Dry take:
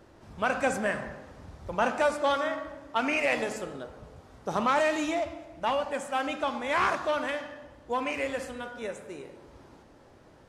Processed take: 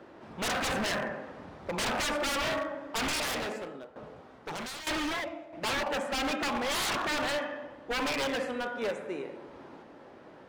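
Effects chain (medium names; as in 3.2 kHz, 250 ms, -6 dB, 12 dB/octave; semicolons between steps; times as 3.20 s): three-band isolator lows -18 dB, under 160 Hz, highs -14 dB, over 3.8 kHz; wavefolder -31 dBFS; 3.05–5.53 s: tremolo saw down 1.1 Hz, depth 80%; trim +5.5 dB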